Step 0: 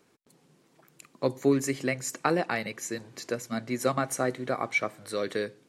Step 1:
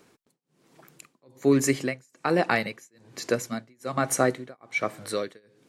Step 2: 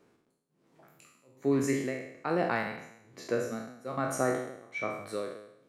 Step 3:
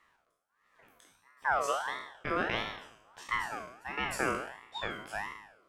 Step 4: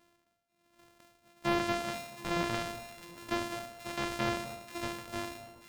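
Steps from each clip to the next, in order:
tremolo 1.2 Hz, depth 99%; gain +6.5 dB
spectral trails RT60 0.79 s; high shelf 2300 Hz -9.5 dB; gain -7 dB
ring modulator with a swept carrier 1200 Hz, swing 30%, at 1.5 Hz
sample sorter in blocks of 128 samples; echo with dull and thin repeats by turns 0.242 s, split 1200 Hz, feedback 70%, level -13 dB; slew limiter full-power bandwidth 220 Hz

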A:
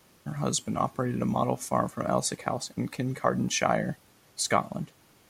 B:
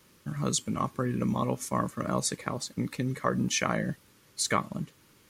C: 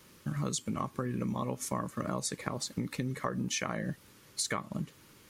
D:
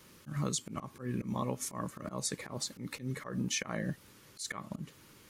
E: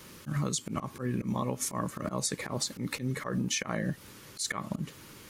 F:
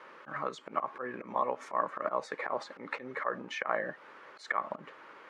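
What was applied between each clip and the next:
bell 720 Hz -14 dB 0.36 oct
compressor, threshold -33 dBFS, peak gain reduction 12 dB; gain +2.5 dB
auto swell 0.111 s
compressor 4:1, threshold -36 dBFS, peak gain reduction 6.5 dB; gain +8 dB
Butterworth band-pass 990 Hz, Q 0.78; gain +6 dB

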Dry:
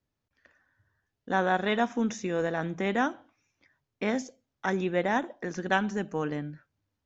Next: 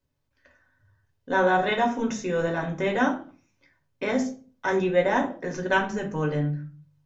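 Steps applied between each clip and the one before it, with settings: reverb RT60 0.40 s, pre-delay 3 ms, DRR 0.5 dB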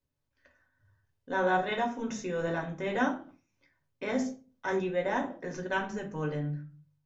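noise-modulated level, depth 60%; gain -3.5 dB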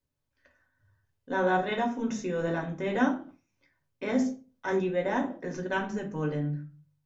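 dynamic EQ 250 Hz, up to +5 dB, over -45 dBFS, Q 1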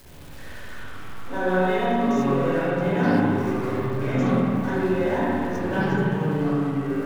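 zero-crossing step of -38 dBFS; spring tank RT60 2.1 s, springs 38/55 ms, chirp 30 ms, DRR -7.5 dB; echoes that change speed 0.219 s, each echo -5 st, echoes 2; gain -4.5 dB

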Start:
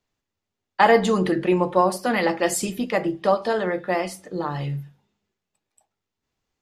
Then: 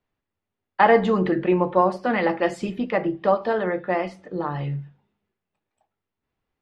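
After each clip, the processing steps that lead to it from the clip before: LPF 2600 Hz 12 dB/oct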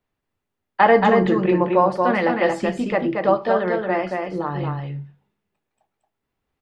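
echo 0.228 s -4 dB; gain +1.5 dB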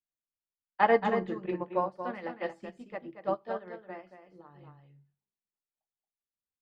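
upward expander 2.5:1, over -25 dBFS; gain -7.5 dB

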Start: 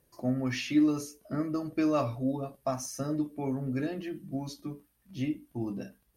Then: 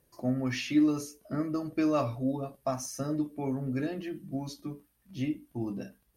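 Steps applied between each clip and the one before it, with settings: nothing audible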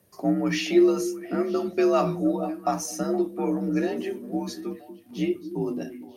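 delay with a stepping band-pass 0.235 s, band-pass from 220 Hz, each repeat 1.4 oct, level -9 dB; frequency shift +50 Hz; gain +6 dB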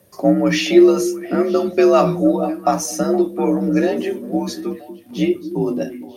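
small resonant body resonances 550/3500 Hz, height 10 dB, ringing for 85 ms; gain +8 dB

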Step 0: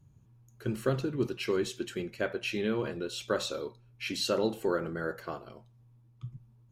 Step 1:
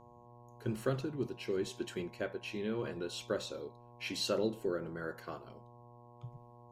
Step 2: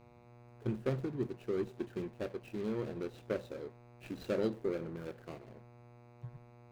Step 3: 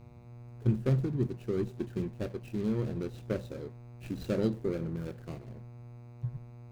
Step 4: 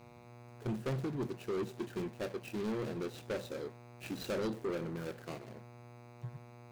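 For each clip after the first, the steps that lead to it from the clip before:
rotary speaker horn 0.9 Hz; buzz 120 Hz, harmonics 9, -55 dBFS 0 dB/oct; gain -3.5 dB
median filter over 41 samples; gain +1 dB
tone controls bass +12 dB, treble +5 dB
HPF 610 Hz 6 dB/oct; soft clip -37.5 dBFS, distortion -9 dB; gain +6.5 dB

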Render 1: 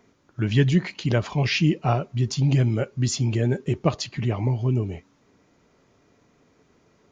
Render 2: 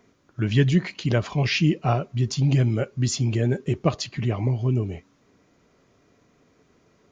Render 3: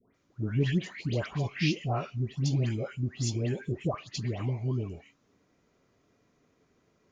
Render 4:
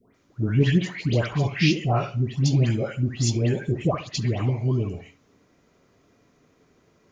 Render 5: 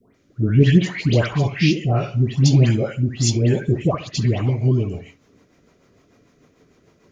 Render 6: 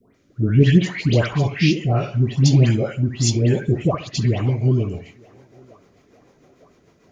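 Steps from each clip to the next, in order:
notch 880 Hz, Q 14
dispersion highs, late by 0.15 s, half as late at 1400 Hz; gain -8 dB
darkening echo 68 ms, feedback 31%, low-pass 1700 Hz, level -12 dB; gain +7.5 dB
rotary speaker horn 0.7 Hz, later 6.7 Hz, at 2.91; gain +6.5 dB
narrowing echo 0.91 s, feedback 62%, band-pass 820 Hz, level -21.5 dB

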